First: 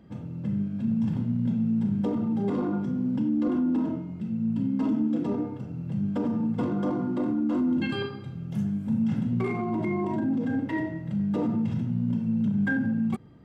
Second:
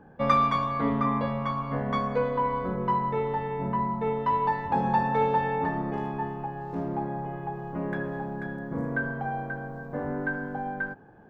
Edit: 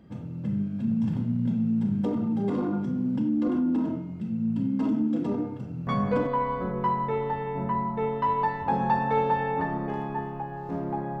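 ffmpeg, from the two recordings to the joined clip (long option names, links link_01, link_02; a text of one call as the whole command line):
ffmpeg -i cue0.wav -i cue1.wav -filter_complex "[0:a]apad=whole_dur=11.2,atrim=end=11.2,atrim=end=6.27,asetpts=PTS-STARTPTS[link_01];[1:a]atrim=start=1.91:end=7.24,asetpts=PTS-STARTPTS[link_02];[link_01][link_02]acrossfade=duration=0.4:curve1=log:curve2=log" out.wav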